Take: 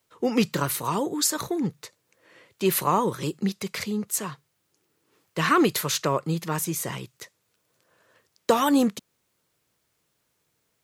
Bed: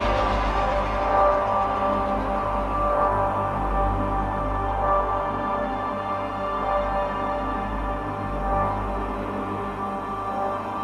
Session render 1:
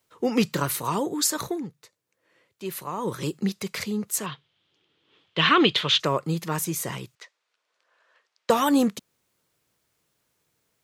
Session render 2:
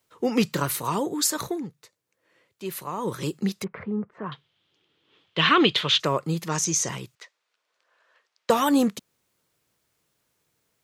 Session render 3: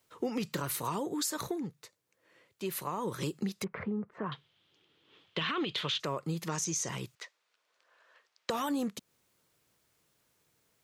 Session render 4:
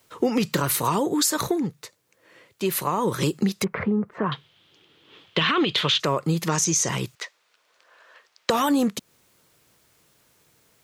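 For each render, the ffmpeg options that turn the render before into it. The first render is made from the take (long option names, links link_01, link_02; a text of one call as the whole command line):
ffmpeg -i in.wav -filter_complex "[0:a]asettb=1/sr,asplit=3[link_01][link_02][link_03];[link_01]atrim=end=4.264[link_04];[link_02]atrim=start=4.26:end=6,asetpts=PTS-STARTPTS,afade=type=in:duration=0.004:curve=qsin,afade=type=out:start_time=1.736:duration=0.004:curve=qsin,lowpass=frequency=3300:width_type=q:width=5.9[link_05];[link_03]atrim=start=5.996[link_06];[link_04][link_05]acrossfade=duration=0.004:curve1=hsin:curve2=qsin[link_07];[link_07][link_06]acrossfade=duration=0.004:curve1=qsin:curve2=hsin,asettb=1/sr,asplit=3[link_08][link_09][link_10];[link_08]atrim=end=7.154[link_11];[link_09]atrim=start=7.15:end=8.5,asetpts=PTS-STARTPTS,afade=type=in:duration=0.004:curve=qsin,afade=type=out:start_time=1.346:duration=0.004:curve=qsin,highpass=750,lowpass=4400[link_12];[link_10]atrim=start=8.496[link_13];[link_11][link_12]acrossfade=duration=0.004:curve1=hsin:curve2=qsin[link_14];[link_14][link_13]acrossfade=duration=0.004:curve1=qsin:curve2=hsin,asplit=3[link_15][link_16][link_17];[link_15]atrim=end=1.66,asetpts=PTS-STARTPTS,afade=type=out:start_time=1.5:duration=0.16:silence=0.298538[link_18];[link_16]atrim=start=1.66:end=2.97,asetpts=PTS-STARTPTS,volume=-10.5dB[link_19];[link_17]atrim=start=2.97,asetpts=PTS-STARTPTS,afade=type=in:duration=0.16:silence=0.298538[link_20];[link_18][link_19][link_20]concat=n=3:v=0:a=1" out.wav
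ffmpeg -i in.wav -filter_complex "[0:a]asettb=1/sr,asplit=3[link_01][link_02][link_03];[link_01]atrim=end=3.644[link_04];[link_02]atrim=start=3.64:end=4.32,asetpts=PTS-STARTPTS,afade=type=in:duration=0.004:curve=qsin,afade=type=out:start_time=0.676:duration=0.004:curve=qsin,lowpass=frequency=1600:width=0.5412,lowpass=frequency=1600:width=1.3066[link_05];[link_03]atrim=start=4.316[link_06];[link_04][link_05]acrossfade=duration=0.004:curve1=hsin:curve2=qsin[link_07];[link_07][link_06]acrossfade=duration=0.004:curve1=qsin:curve2=hsin,asettb=1/sr,asplit=3[link_08][link_09][link_10];[link_08]atrim=end=6.494[link_11];[link_09]atrim=start=6.49:end=6.89,asetpts=PTS-STARTPTS,afade=type=in:duration=0.004:curve=qsin,afade=type=out:start_time=0.396:duration=0.004:curve=qsin,lowpass=frequency=6200:width_type=q:width=5.7[link_12];[link_10]atrim=start=6.886[link_13];[link_11][link_12]acrossfade=duration=0.004:curve1=hsin:curve2=qsin[link_14];[link_14][link_13]acrossfade=duration=0.004:curve1=qsin:curve2=hsin" out.wav
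ffmpeg -i in.wav -af "alimiter=limit=-14.5dB:level=0:latency=1:release=19,acompressor=threshold=-32dB:ratio=4" out.wav
ffmpeg -i in.wav -af "volume=11.5dB" out.wav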